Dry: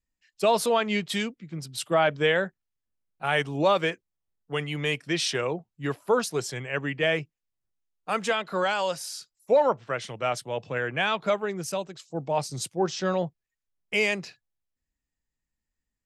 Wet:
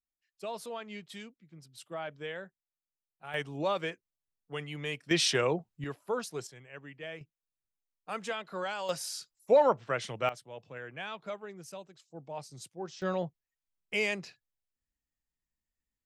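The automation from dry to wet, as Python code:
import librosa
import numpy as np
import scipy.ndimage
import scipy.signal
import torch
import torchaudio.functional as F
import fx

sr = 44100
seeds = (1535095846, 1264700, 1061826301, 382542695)

y = fx.gain(x, sr, db=fx.steps((0.0, -17.0), (3.34, -9.0), (5.11, 0.0), (5.84, -10.0), (6.47, -18.0), (7.21, -10.0), (8.89, -2.0), (10.29, -14.5), (13.02, -6.0)))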